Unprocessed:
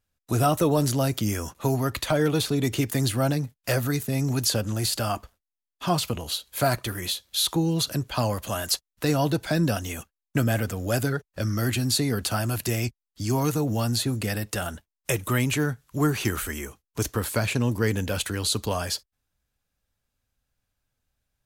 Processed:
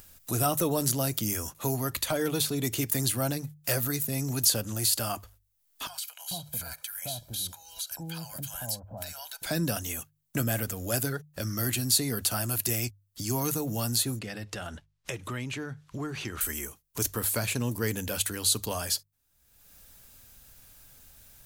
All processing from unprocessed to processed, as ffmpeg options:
-filter_complex "[0:a]asettb=1/sr,asplit=3[s0][s1][s2];[s0]atrim=end=5.874[s3];[s1]atrim=start=5.87:end=9.42,asetpts=PTS-STARTPTS,afade=t=in:d=0.004:c=qsin,afade=t=out:st=3.546:d=0.004:c=qsin,aecho=1:1:1.3:0.72,atrim=end_sample=156555,acompressor=threshold=0.00891:ratio=2:attack=3.2:release=140:knee=1:detection=peak,acrossover=split=920[s4][s5];[s4]adelay=440[s6];[s6][s5]amix=inputs=2:normalize=0,atrim=end_sample=156555[s7];[s2]atrim=start=9.416[s8];[s3][s7]acrossfade=d=0.004:c1=hsin:c2=qsin[s9];[s9][s8]acrossfade=d=0.004:c1=qsin:c2=hsin,asettb=1/sr,asplit=3[s10][s11][s12];[s10]atrim=end=14.194[s13];[s11]atrim=start=14.19:end=16.41,asetpts=PTS-STARTPTS,afade=t=in:d=0.004:c=qsin,afade=t=out:st=2.216:d=0.004:c=qsin,lowpass=4200,acompressor=threshold=0.0178:ratio=1.5:attack=3.2:release=140:knee=1:detection=peak[s14];[s12]atrim=start=16.406[s15];[s13][s14]acrossfade=d=0.004:c1=hsin:c2=qsin[s16];[s16][s15]acrossfade=d=0.004:c1=qsin:c2=hsin,aemphasis=mode=production:type=50kf,bandreject=f=50:t=h:w=6,bandreject=f=100:t=h:w=6,bandreject=f=150:t=h:w=6,acompressor=mode=upward:threshold=0.0501:ratio=2.5,volume=0.501"

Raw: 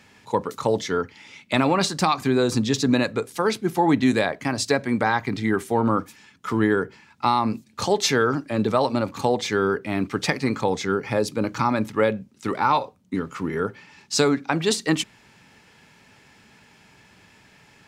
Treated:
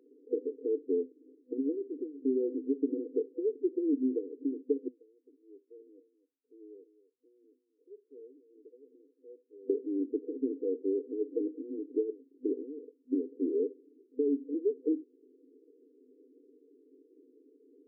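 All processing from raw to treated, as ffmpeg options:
-filter_complex "[0:a]asettb=1/sr,asplit=3[s0][s1][s2];[s0]atrim=end=4.884[s3];[s1]atrim=start=4.88:end=9.7,asetpts=PTS-STARTPTS,afade=t=in:d=0.004:c=qsin,afade=t=out:st=4.816:d=0.004:c=qsin,bandpass=f=2600:t=q:w=6.3,aecho=1:1:258:0.178,atrim=end_sample=212562[s4];[s2]atrim=start=9.696[s5];[s3][s4]acrossfade=d=0.004:c1=hsin:c2=qsin[s6];[s6][s5]acrossfade=d=0.004:c1=qsin:c2=hsin,acompressor=threshold=0.0398:ratio=6,afftfilt=real='re*between(b*sr/4096,250,500)':imag='im*between(b*sr/4096,250,500)':win_size=4096:overlap=0.75,volume=1.5"

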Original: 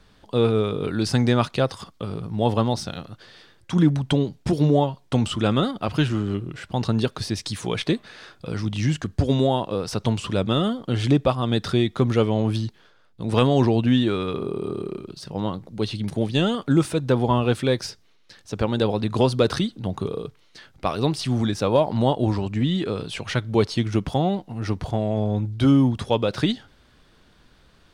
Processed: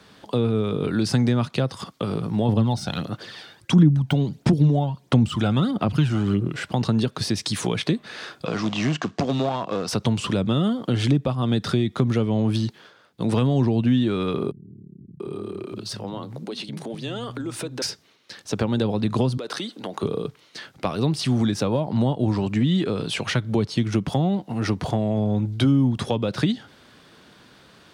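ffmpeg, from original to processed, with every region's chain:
-filter_complex "[0:a]asettb=1/sr,asplit=3[s0][s1][s2];[s0]atrim=end=2.484[s3];[s1]atrim=start=2.48:end=6.48,asetpts=PTS-STARTPTS,afade=t=in:d=0.004:c=qsin,afade=t=out:st=3.996:d=0.004:c=qsin,deesser=0.7,aphaser=in_gain=1:out_gain=1:delay=1.4:decay=0.49:speed=1.5:type=sinusoidal[s4];[s2]atrim=start=6.476[s5];[s3][s4]acrossfade=d=0.004:c1=hsin:c2=qsin[s6];[s6][s5]acrossfade=d=0.004:c1=qsin:c2=hsin,asettb=1/sr,asplit=3[s7][s8][s9];[s7]atrim=end=8.454[s10];[s8]atrim=start=8.45:end=9.88,asetpts=PTS-STARTPTS,afade=t=in:d=0.004:c=qsin,afade=t=out:st=1.426:d=0.004:c=qsin,acrusher=bits=5:mode=log:mix=0:aa=0.000001,aeval=exprs='clip(val(0),-1,0.0422)':c=same,highpass=160,equalizer=f=700:t=q:w=4:g=7,equalizer=f=1100:t=q:w=4:g=7,equalizer=f=2700:t=q:w=4:g=3,lowpass=f=6700:w=0.5412,lowpass=f=6700:w=1.3066[s11];[s9]atrim=start=9.876[s12];[s10][s11]acrossfade=d=0.004:c1=hsin:c2=qsin[s13];[s13][s12]acrossfade=d=0.004:c1=qsin:c2=hsin,asettb=1/sr,asplit=3[s14][s15][s16];[s14]atrim=end=14.514[s17];[s15]atrim=start=14.51:end=17.82,asetpts=PTS-STARTPTS,afade=t=in:d=0.004:c=qsin,afade=t=out:st=3.306:d=0.004:c=qsin,acompressor=threshold=0.02:ratio=5:attack=3.2:release=140:knee=1:detection=peak,acrossover=split=190[s18][s19];[s19]adelay=690[s20];[s18][s20]amix=inputs=2:normalize=0,atrim=end_sample=145971[s21];[s16]atrim=start=17.816[s22];[s17][s21]acrossfade=d=0.004:c1=hsin:c2=qsin[s23];[s23][s22]acrossfade=d=0.004:c1=qsin:c2=hsin,asettb=1/sr,asplit=3[s24][s25][s26];[s24]atrim=end=19.374[s27];[s25]atrim=start=19.37:end=20.03,asetpts=PTS-STARTPTS,afade=t=in:d=0.004:c=qsin,afade=t=out:st=0.656:d=0.004:c=qsin,highpass=340,acompressor=threshold=0.0224:ratio=4:attack=3.2:release=140:knee=1:detection=peak[s28];[s26]atrim=start=20.026[s29];[s27][s28]acrossfade=d=0.004:c1=hsin:c2=qsin[s30];[s30][s29]acrossfade=d=0.004:c1=qsin:c2=hsin,acrossover=split=220[s31][s32];[s32]acompressor=threshold=0.0282:ratio=5[s33];[s31][s33]amix=inputs=2:normalize=0,highpass=140,acompressor=threshold=0.0447:ratio=1.5,volume=2.37"

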